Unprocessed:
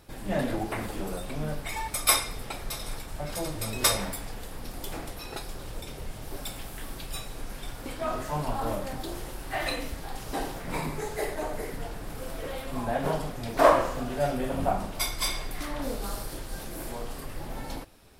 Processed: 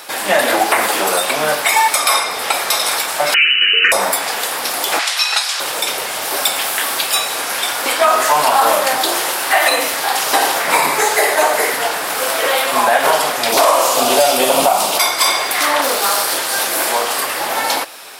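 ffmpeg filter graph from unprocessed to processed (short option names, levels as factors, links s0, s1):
-filter_complex "[0:a]asettb=1/sr,asplit=3[s0][s1][s2];[s0]atrim=end=3.344[s3];[s1]atrim=start=3.34:end=3.92,asetpts=PTS-STARTPTS,afade=t=in:d=0.004:c=qsin,afade=t=out:st=0.576:d=0.004:c=qsin,lowpass=f=2600:t=q:w=0.5098,lowpass=f=2600:t=q:w=0.6013,lowpass=f=2600:t=q:w=0.9,lowpass=f=2600:t=q:w=2.563,afreqshift=-3000,acontrast=54,asuperstop=centerf=780:order=8:qfactor=0.77[s4];[s2]atrim=start=3.916[s5];[s3][s4]acrossfade=d=0.004:c1=hsin:c2=qsin[s6];[s6][s5]acrossfade=d=0.004:c1=qsin:c2=hsin,asettb=1/sr,asplit=3[s7][s8][s9];[s7]atrim=end=4.994[s10];[s8]atrim=start=4.99:end=5.6,asetpts=PTS-STARTPTS,afade=t=in:d=0.004:c=qsin,afade=t=out:st=0.606:d=0.004:c=qsin,highpass=700,lowpass=5600,tiltshelf=f=1400:g=-9[s11];[s9]atrim=start=5.596[s12];[s10][s11]acrossfade=d=0.004:c1=hsin:c2=qsin[s13];[s13][s12]acrossfade=d=0.004:c1=qsin:c2=hsin,asettb=1/sr,asplit=3[s14][s15][s16];[s14]atrim=end=13.524[s17];[s15]atrim=start=13.52:end=14.98,asetpts=PTS-STARTPTS,afade=t=in:d=0.004:c=qsin,afade=t=out:st=1.456:d=0.004:c=qsin,equalizer=f=1700:w=1.5:g=-14.5,acontrast=76[s18];[s16]atrim=start=14.976[s19];[s17][s18]acrossfade=d=0.004:c1=hsin:c2=qsin[s20];[s20][s19]acrossfade=d=0.004:c1=qsin:c2=hsin,asettb=1/sr,asplit=3[s21][s22][s23];[s21]atrim=end=15.814[s24];[s22]atrim=start=15.81:end=16.46,asetpts=PTS-STARTPTS,afade=t=in:d=0.004:c=qsin,afade=t=out:st=0.646:d=0.004:c=qsin,highpass=45,asoftclip=type=hard:threshold=0.0237[s25];[s23]atrim=start=16.456[s26];[s24][s25]acrossfade=d=0.004:c1=hsin:c2=qsin[s27];[s27][s26]acrossfade=d=0.004:c1=qsin:c2=hsin,highpass=800,acrossover=split=1200|6600[s28][s29][s30];[s28]acompressor=threshold=0.0126:ratio=4[s31];[s29]acompressor=threshold=0.00794:ratio=4[s32];[s30]acompressor=threshold=0.00562:ratio=4[s33];[s31][s32][s33]amix=inputs=3:normalize=0,alimiter=level_in=23.7:limit=0.891:release=50:level=0:latency=1,volume=0.891"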